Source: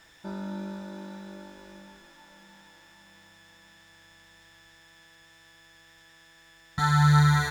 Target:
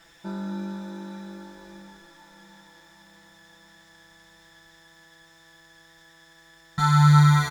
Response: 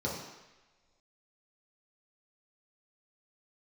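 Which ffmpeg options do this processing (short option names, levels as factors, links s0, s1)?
-af "aecho=1:1:5.9:0.75"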